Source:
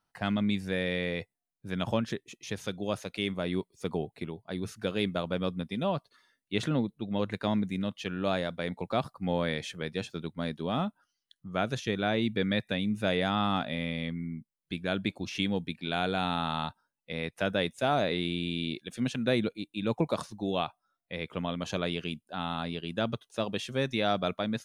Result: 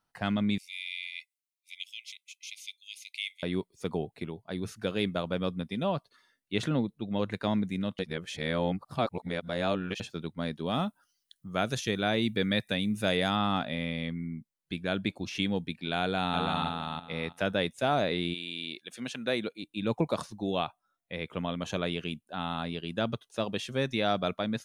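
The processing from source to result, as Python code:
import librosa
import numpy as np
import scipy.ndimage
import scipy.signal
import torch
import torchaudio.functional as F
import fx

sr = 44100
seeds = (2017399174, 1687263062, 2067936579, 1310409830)

y = fx.brickwall_highpass(x, sr, low_hz=2000.0, at=(0.58, 3.43))
y = fx.high_shelf(y, sr, hz=5600.0, db=11.5, at=(10.66, 13.37))
y = fx.echo_throw(y, sr, start_s=16.0, length_s=0.66, ms=330, feedback_pct=20, wet_db=-4.0)
y = fx.highpass(y, sr, hz=fx.line((18.33, 1100.0), (19.62, 340.0)), slope=6, at=(18.33, 19.62), fade=0.02)
y = fx.peak_eq(y, sr, hz=4800.0, db=-7.0, octaves=0.24, at=(20.64, 22.75))
y = fx.edit(y, sr, fx.reverse_span(start_s=7.99, length_s=2.01), tone=tone)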